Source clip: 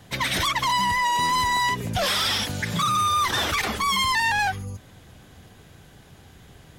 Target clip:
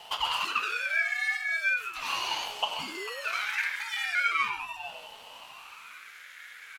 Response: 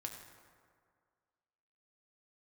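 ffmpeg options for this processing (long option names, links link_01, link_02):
-filter_complex "[0:a]asplit=3[link_01][link_02][link_03];[link_01]afade=type=out:start_time=1.36:duration=0.02[link_04];[link_02]agate=range=-33dB:threshold=-15dB:ratio=3:detection=peak,afade=type=in:start_time=1.36:duration=0.02,afade=type=out:start_time=1.76:duration=0.02[link_05];[link_03]afade=type=in:start_time=1.76:duration=0.02[link_06];[link_04][link_05][link_06]amix=inputs=3:normalize=0,acompressor=threshold=-38dB:ratio=8,highpass=frequency=1900:width_type=q:width=7.6,asplit=2[link_07][link_08];[link_08]adelay=449,volume=-11dB,highshelf=frequency=4000:gain=-10.1[link_09];[link_07][link_09]amix=inputs=2:normalize=0[link_10];[1:a]atrim=start_sample=2205,afade=type=out:start_time=0.27:duration=0.01,atrim=end_sample=12348[link_11];[link_10][link_11]afir=irnorm=-1:irlink=0,aeval=exprs='val(0)*sin(2*PI*640*n/s+640*0.65/0.39*sin(2*PI*0.39*n/s))':channel_layout=same,volume=6.5dB"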